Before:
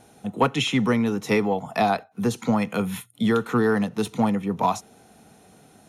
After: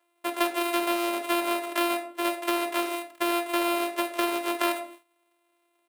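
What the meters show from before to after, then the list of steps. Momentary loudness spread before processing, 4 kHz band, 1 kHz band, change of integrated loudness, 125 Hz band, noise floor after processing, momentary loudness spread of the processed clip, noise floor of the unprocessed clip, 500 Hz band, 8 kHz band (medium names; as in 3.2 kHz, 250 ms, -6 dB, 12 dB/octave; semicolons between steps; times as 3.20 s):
6 LU, 0.0 dB, -2.5 dB, -4.0 dB, under -35 dB, -72 dBFS, 4 LU, -54 dBFS, -4.0 dB, +2.5 dB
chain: sorted samples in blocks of 128 samples; comb 3 ms, depth 76%; simulated room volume 290 m³, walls furnished, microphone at 0.99 m; compression 3:1, threshold -21 dBFS, peak gain reduction 9.5 dB; Bessel high-pass 590 Hz, order 8; gate with hold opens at -34 dBFS; loudspeaker Doppler distortion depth 0.13 ms; trim +2 dB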